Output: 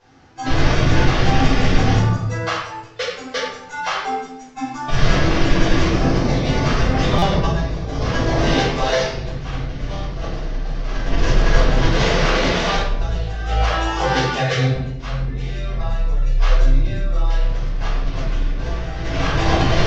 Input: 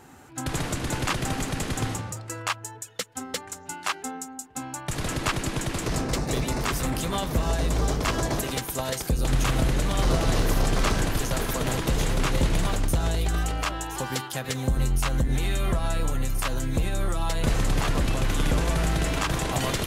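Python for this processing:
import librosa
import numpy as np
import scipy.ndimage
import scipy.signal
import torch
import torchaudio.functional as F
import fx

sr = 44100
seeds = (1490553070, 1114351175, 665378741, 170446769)

y = fx.cvsd(x, sr, bps=32000)
y = fx.highpass(y, sr, hz=fx.line((11.9, 170.0), (12.75, 640.0)), slope=6, at=(11.9, 12.75), fade=0.02)
y = fx.noise_reduce_blind(y, sr, reduce_db=14)
y = fx.over_compress(y, sr, threshold_db=-29.0, ratio=-0.5)
y = fx.room_shoebox(y, sr, seeds[0], volume_m3=230.0, walls='mixed', distance_m=5.1)
y = fx.buffer_glitch(y, sr, at_s=(7.18,), block=256, repeats=6)
y = F.gain(torch.from_numpy(y), -4.5).numpy()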